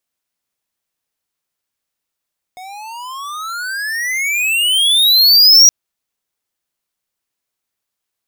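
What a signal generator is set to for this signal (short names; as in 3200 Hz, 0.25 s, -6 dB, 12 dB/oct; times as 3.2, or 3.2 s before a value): gliding synth tone square, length 3.12 s, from 725 Hz, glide +36 st, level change +28 dB, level -4.5 dB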